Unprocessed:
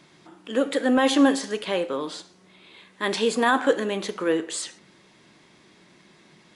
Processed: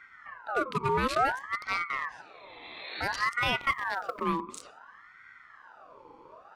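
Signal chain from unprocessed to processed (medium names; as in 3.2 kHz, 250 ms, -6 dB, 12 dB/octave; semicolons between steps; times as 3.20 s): local Wiener filter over 41 samples; 2.19–3.19 s: spectral replace 1.2–3.4 kHz both; compression 2:1, threshold -42 dBFS, peak gain reduction 15.5 dB; 3.60–4.22 s: companded quantiser 8-bit; ring modulator with a swept carrier 1.2 kHz, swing 45%, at 0.57 Hz; trim +9 dB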